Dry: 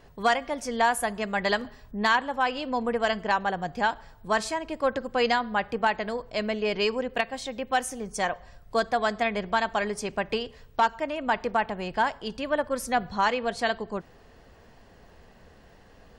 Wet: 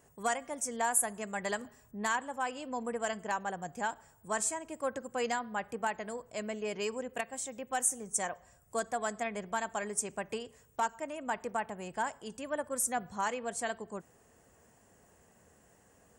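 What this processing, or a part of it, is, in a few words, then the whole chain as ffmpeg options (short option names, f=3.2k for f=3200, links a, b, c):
budget condenser microphone: -af "highpass=82,highshelf=f=5.8k:t=q:w=3:g=11,volume=-9dB"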